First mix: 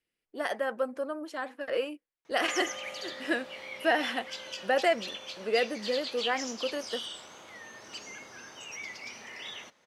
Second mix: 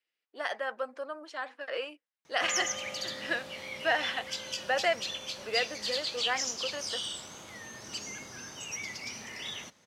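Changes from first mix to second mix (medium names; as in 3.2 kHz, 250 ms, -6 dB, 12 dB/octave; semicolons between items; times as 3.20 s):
speech: add band-pass 700–4100 Hz; master: add tone controls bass +11 dB, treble +8 dB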